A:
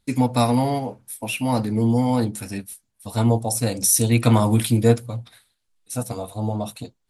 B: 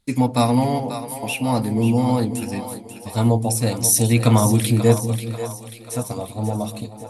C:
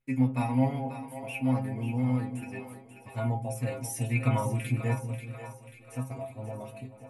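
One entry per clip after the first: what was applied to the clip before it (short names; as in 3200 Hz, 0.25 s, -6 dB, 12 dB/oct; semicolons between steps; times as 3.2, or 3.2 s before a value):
notch 1500 Hz, Q 19; split-band echo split 390 Hz, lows 0.191 s, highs 0.538 s, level -10 dB; gain +1 dB
resonant high shelf 3100 Hz -8.5 dB, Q 3; metallic resonator 130 Hz, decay 0.23 s, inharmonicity 0.002; gain -2 dB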